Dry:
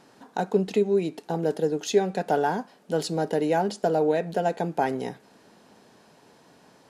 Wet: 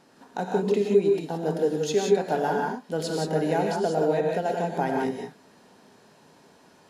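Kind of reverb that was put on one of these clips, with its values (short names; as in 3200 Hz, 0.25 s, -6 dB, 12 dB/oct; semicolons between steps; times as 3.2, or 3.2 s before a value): non-linear reverb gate 0.2 s rising, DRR -0.5 dB; gain -3 dB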